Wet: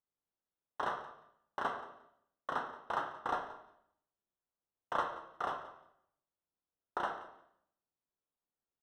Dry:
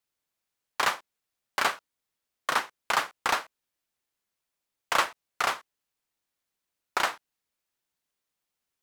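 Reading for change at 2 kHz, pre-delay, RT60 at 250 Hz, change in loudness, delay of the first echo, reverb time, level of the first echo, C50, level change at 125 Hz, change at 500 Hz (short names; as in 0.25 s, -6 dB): -14.5 dB, 12 ms, 0.85 s, -10.5 dB, 0.177 s, 0.75 s, -17.0 dB, 7.5 dB, -4.0 dB, -5.5 dB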